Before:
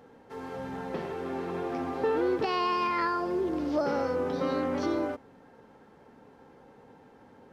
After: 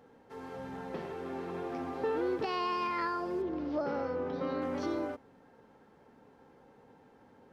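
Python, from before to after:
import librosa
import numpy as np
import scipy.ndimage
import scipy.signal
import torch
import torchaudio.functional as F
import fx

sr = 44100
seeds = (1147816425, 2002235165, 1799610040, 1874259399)

y = fx.air_absorb(x, sr, metres=150.0, at=(3.42, 4.62))
y = y * 10.0 ** (-5.0 / 20.0)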